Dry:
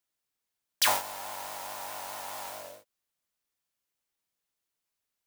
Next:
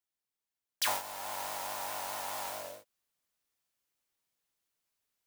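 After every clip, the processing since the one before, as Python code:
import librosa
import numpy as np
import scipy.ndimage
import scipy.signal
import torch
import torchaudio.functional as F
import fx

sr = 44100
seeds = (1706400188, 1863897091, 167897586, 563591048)

y = fx.rider(x, sr, range_db=4, speed_s=0.5)
y = y * 10.0 ** (-3.0 / 20.0)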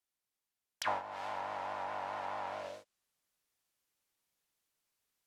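y = fx.env_lowpass_down(x, sr, base_hz=1600.0, full_db=-34.0)
y = y * 10.0 ** (1.0 / 20.0)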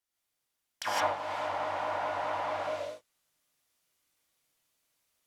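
y = fx.rev_gated(x, sr, seeds[0], gate_ms=190, shape='rising', drr_db=-6.0)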